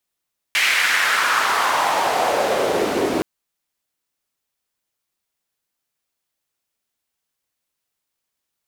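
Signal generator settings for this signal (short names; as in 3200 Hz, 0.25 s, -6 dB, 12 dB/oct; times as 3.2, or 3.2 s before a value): swept filtered noise white, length 2.67 s bandpass, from 2300 Hz, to 330 Hz, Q 2.6, exponential, gain ramp +6 dB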